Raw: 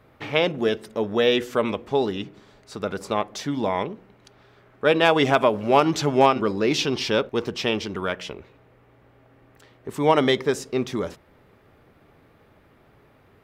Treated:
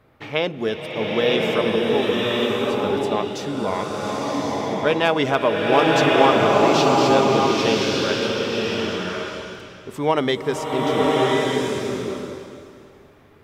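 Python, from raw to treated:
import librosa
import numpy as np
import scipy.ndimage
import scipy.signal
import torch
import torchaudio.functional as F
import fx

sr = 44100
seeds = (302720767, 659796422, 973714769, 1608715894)

y = fx.rev_bloom(x, sr, seeds[0], attack_ms=1120, drr_db=-4.0)
y = F.gain(torch.from_numpy(y), -1.5).numpy()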